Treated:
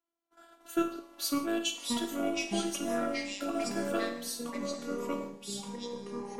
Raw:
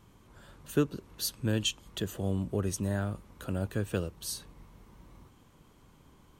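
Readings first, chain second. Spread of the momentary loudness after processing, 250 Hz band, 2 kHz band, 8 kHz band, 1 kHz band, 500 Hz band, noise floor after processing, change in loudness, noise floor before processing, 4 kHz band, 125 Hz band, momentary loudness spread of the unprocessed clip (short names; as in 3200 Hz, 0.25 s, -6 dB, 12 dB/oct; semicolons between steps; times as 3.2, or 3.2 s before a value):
7 LU, +2.0 dB, +4.0 dB, +1.5 dB, +9.0 dB, +2.0 dB, -68 dBFS, -0.5 dB, -60 dBFS, +1.0 dB, -15.5 dB, 7 LU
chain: octaver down 1 oct, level -2 dB; gate -51 dBFS, range -29 dB; HPF 230 Hz 24 dB/oct; non-linear reverb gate 0.2 s falling, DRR 5 dB; robotiser 336 Hz; short-mantissa float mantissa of 6-bit; small resonant body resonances 720/1400 Hz, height 13 dB, ringing for 45 ms; echoes that change speed 0.407 s, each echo -3 st, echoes 3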